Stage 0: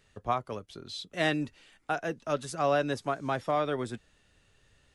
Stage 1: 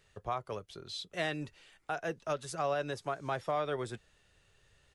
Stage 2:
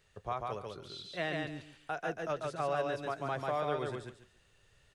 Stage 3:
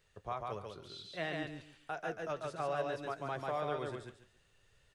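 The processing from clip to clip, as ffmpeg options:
ffmpeg -i in.wav -af "alimiter=limit=-21.5dB:level=0:latency=1:release=207,firequalizer=gain_entry='entry(160,0);entry(250,-8);entry(370,1)':delay=0.05:min_phase=1,volume=-2.5dB" out.wav
ffmpeg -i in.wav -filter_complex "[0:a]aecho=1:1:142|284|426:0.708|0.149|0.0312,acrossover=split=3900[link_01][link_02];[link_02]acompressor=threshold=-55dB:ratio=4:attack=1:release=60[link_03];[link_01][link_03]amix=inputs=2:normalize=0,volume=-1.5dB" out.wav
ffmpeg -i in.wav -af "flanger=delay=1.9:depth=9.4:regen=82:speed=0.62:shape=sinusoidal,volume=1.5dB" out.wav

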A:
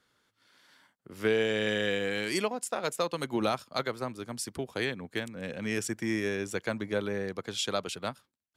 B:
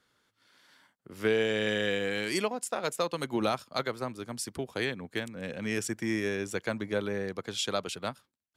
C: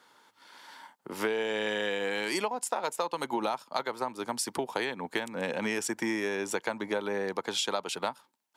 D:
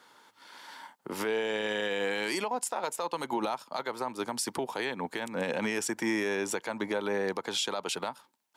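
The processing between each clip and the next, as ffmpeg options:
ffmpeg -i in.wav -af anull out.wav
ffmpeg -i in.wav -af "highpass=240,equalizer=frequency=900:width_type=o:width=0.39:gain=13.5,acompressor=threshold=-37dB:ratio=6,volume=9dB" out.wav
ffmpeg -i in.wav -af "alimiter=limit=-23dB:level=0:latency=1:release=63,volume=2.5dB" out.wav

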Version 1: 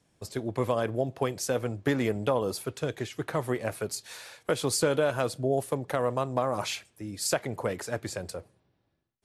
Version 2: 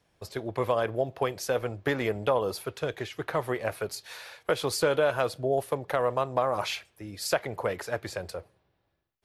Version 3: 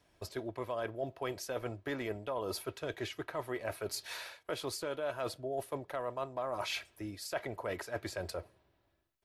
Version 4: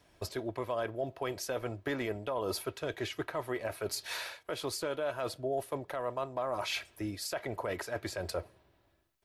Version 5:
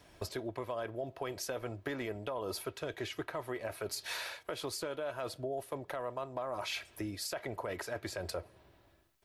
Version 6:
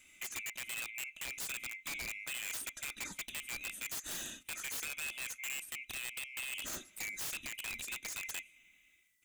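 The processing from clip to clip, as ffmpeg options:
ffmpeg -i in.wav -af "equalizer=frequency=125:width_type=o:width=1:gain=-5,equalizer=frequency=250:width_type=o:width=1:gain=-8,equalizer=frequency=8000:width_type=o:width=1:gain=-10,volume=3dB" out.wav
ffmpeg -i in.wav -af "aecho=1:1:3.1:0.34,areverse,acompressor=threshold=-35dB:ratio=5,areverse" out.wav
ffmpeg -i in.wav -af "alimiter=level_in=5dB:limit=-24dB:level=0:latency=1:release=211,volume=-5dB,volume=5dB" out.wav
ffmpeg -i in.wav -af "acompressor=threshold=-44dB:ratio=2.5,volume=5dB" out.wav
ffmpeg -i in.wav -af "afftfilt=real='real(if(lt(b,920),b+92*(1-2*mod(floor(b/92),2)),b),0)':imag='imag(if(lt(b,920),b+92*(1-2*mod(floor(b/92),2)),b),0)':win_size=2048:overlap=0.75,equalizer=frequency=125:width_type=o:width=1:gain=-4,equalizer=frequency=500:width_type=o:width=1:gain=-11,equalizer=frequency=1000:width_type=o:width=1:gain=-12,equalizer=frequency=4000:width_type=o:width=1:gain=-7,equalizer=frequency=8000:width_type=o:width=1:gain=5,aeval=exprs='(mod(59.6*val(0)+1,2)-1)/59.6':channel_layout=same,volume=1.5dB" out.wav

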